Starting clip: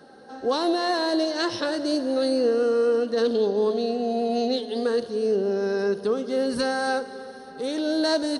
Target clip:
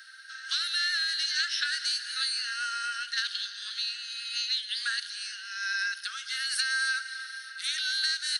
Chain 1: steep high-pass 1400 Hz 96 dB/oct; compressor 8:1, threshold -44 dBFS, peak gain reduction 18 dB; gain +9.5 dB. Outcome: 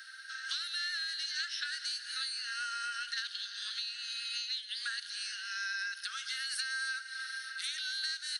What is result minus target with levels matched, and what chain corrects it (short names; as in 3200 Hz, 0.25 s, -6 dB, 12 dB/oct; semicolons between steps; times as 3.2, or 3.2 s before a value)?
compressor: peak gain reduction +8 dB
steep high-pass 1400 Hz 96 dB/oct; compressor 8:1, threshold -35 dBFS, peak gain reduction 10 dB; gain +9.5 dB